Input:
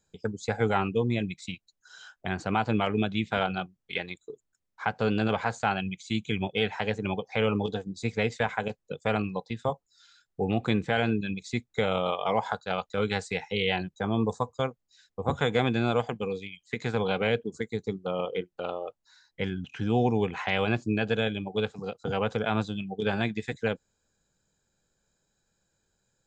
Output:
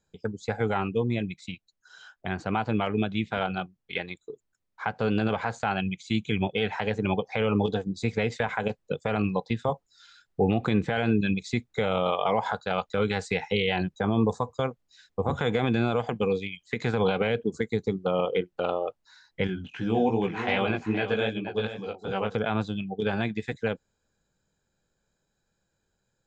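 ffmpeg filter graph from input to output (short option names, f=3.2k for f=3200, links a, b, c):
-filter_complex "[0:a]asettb=1/sr,asplit=3[a][b][c];[a]atrim=end=19.474[d];[b]atrim=start=19.47:end=22.35,asetpts=PTS-STARTPTS,afade=t=in:d=0.004:c=qsin,afade=t=out:st=2.876:d=0.004:c=qsin,flanger=delay=15.5:depth=5:speed=2.6,equalizer=f=130:t=o:w=0.84:g=-6,aecho=1:1:473:0.299,atrim=end_sample=127008[e];[c]atrim=start=22.346[f];[d][e]acrossfade=d=0.004:c1=hsin:c2=qsin[g];[g][f]acrossfade=d=0.004:c1=qsin:c2=hsin,highshelf=f=6.6k:g=-11,dynaudnorm=f=750:g=17:m=8dB,alimiter=limit=-13.5dB:level=0:latency=1:release=80"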